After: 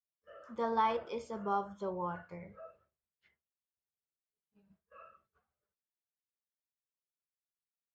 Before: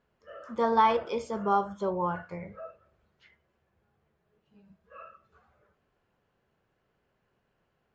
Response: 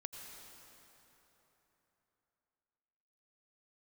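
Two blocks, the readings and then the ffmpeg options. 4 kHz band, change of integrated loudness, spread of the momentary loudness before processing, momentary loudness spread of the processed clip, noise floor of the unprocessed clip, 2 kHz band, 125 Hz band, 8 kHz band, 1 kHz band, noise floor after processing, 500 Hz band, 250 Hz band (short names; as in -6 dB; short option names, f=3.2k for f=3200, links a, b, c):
-8.0 dB, -8.0 dB, 21 LU, 20 LU, -76 dBFS, -8.0 dB, -8.0 dB, n/a, -8.0 dB, under -85 dBFS, -8.0 dB, -8.0 dB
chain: -af "agate=range=-33dB:threshold=-55dB:ratio=3:detection=peak,volume=-8dB"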